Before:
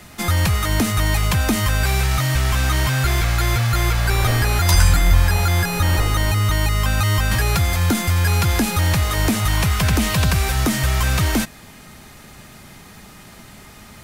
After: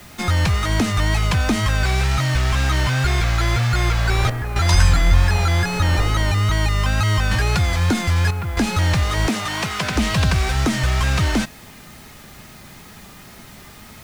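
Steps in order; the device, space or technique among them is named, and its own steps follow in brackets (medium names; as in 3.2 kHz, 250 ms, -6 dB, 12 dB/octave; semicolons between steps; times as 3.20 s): worn cassette (low-pass 6.6 kHz 12 dB/octave; wow and flutter; level dips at 4.30/8.31 s, 257 ms -7 dB; white noise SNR 30 dB); 9.27–9.96 s: high-pass 210 Hz 12 dB/octave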